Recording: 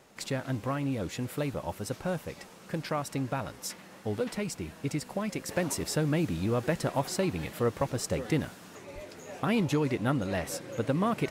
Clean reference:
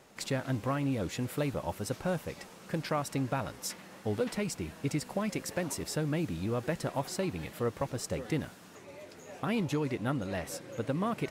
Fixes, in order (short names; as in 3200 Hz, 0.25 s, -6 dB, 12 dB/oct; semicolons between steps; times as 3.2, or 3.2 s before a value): de-plosive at 8.94; gain 0 dB, from 5.49 s -4 dB